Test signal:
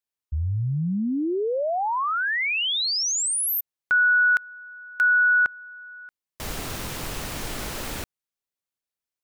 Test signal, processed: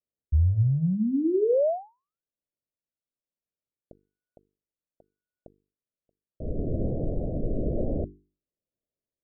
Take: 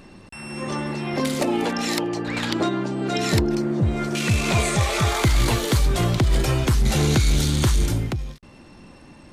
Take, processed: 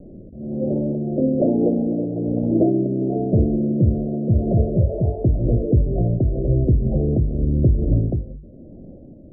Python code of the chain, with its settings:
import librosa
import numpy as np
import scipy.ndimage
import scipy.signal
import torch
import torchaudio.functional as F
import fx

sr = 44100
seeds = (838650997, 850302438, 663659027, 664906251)

y = fx.rattle_buzz(x, sr, strikes_db=-28.0, level_db=-30.0)
y = scipy.signal.sosfilt(scipy.signal.butter(12, 660.0, 'lowpass', fs=sr, output='sos'), y)
y = fx.hum_notches(y, sr, base_hz=50, count=9)
y = fx.rider(y, sr, range_db=3, speed_s=0.5)
y = fx.rotary(y, sr, hz=1.1)
y = F.gain(torch.from_numpy(y), 6.5).numpy()